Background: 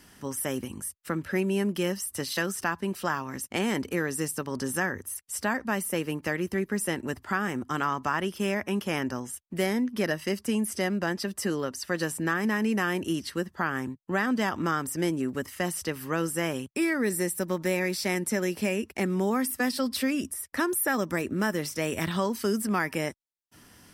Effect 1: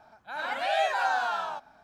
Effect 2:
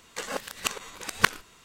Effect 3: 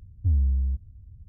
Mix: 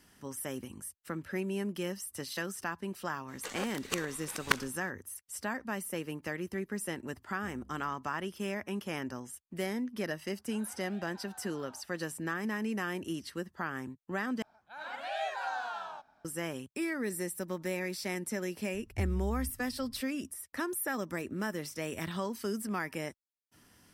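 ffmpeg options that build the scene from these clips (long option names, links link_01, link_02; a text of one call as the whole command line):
ffmpeg -i bed.wav -i cue0.wav -i cue1.wav -i cue2.wav -filter_complex "[3:a]asplit=2[link_01][link_02];[1:a]asplit=2[link_03][link_04];[0:a]volume=-8dB[link_05];[link_01]highpass=340[link_06];[link_03]acompressor=threshold=-35dB:ratio=6:attack=3.2:release=140:knee=1:detection=peak[link_07];[link_02]aecho=1:1:7.1:0.33[link_08];[link_05]asplit=2[link_09][link_10];[link_09]atrim=end=14.424[link_11];[link_04]atrim=end=1.83,asetpts=PTS-STARTPTS,volume=-9.5dB[link_12];[link_10]atrim=start=16.246[link_13];[2:a]atrim=end=1.64,asetpts=PTS-STARTPTS,volume=-7dB,afade=type=in:duration=0.02,afade=type=out:start_time=1.62:duration=0.02,adelay=3270[link_14];[link_06]atrim=end=1.28,asetpts=PTS-STARTPTS,volume=-8.5dB,afade=type=in:duration=0.004:curve=hsin,afade=type=out:start_time=1.276:duration=0.004:curve=hsin,adelay=7180[link_15];[link_07]atrim=end=1.83,asetpts=PTS-STARTPTS,volume=-16.5dB,afade=type=in:duration=0.004:curve=hsin,afade=type=out:start_time=1.826:duration=0.004:curve=hsin,adelay=10220[link_16];[link_08]atrim=end=1.28,asetpts=PTS-STARTPTS,volume=-8.5dB,afade=type=in:duration=0.004:curve=hsin,afade=type=out:start_time=1.276:duration=0.004:curve=hsin,adelay=18730[link_17];[link_11][link_12]acrossfade=duration=0.004:curve1=hsin:curve2=hsin[link_18];[link_18][link_13]acrossfade=duration=0.004:curve1=hsin:curve2=hsin[link_19];[link_19][link_14][link_15][link_16][link_17]amix=inputs=5:normalize=0" out.wav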